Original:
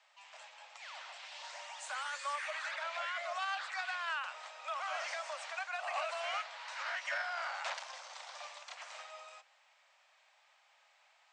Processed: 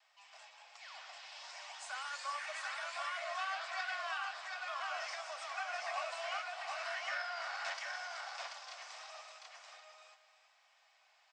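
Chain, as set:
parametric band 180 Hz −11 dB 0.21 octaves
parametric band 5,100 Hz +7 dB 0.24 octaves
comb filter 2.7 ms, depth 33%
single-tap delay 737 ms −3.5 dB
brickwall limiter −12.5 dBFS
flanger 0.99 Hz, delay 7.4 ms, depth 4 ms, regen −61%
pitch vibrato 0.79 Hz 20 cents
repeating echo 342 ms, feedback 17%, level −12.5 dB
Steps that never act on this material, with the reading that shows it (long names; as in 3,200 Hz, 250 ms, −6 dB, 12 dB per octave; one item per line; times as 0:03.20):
parametric band 180 Hz: nothing at its input below 480 Hz
brickwall limiter −12.5 dBFS: peak of its input −22.0 dBFS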